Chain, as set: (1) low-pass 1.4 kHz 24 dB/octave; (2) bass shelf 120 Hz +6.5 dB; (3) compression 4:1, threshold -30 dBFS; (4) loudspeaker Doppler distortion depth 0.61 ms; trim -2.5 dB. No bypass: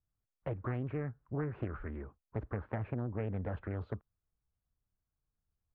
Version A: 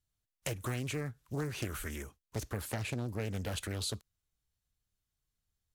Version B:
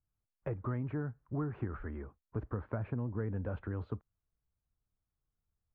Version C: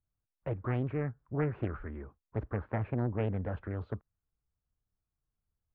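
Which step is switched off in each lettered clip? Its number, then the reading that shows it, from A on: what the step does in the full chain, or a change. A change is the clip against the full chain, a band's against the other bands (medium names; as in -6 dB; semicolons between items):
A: 1, 2 kHz band +7.0 dB; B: 4, 250 Hz band +2.0 dB; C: 3, mean gain reduction 2.5 dB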